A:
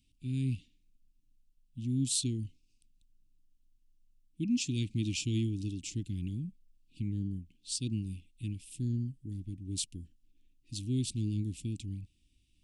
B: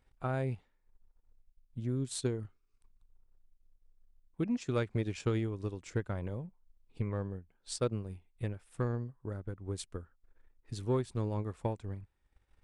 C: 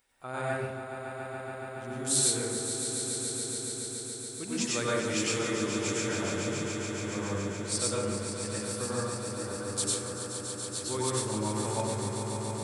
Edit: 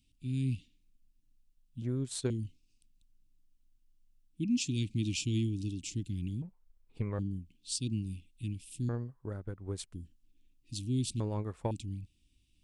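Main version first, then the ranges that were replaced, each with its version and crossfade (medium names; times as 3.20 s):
A
1.82–2.30 s: from B
6.42–7.19 s: from B
8.89–9.93 s: from B
11.20–11.71 s: from B
not used: C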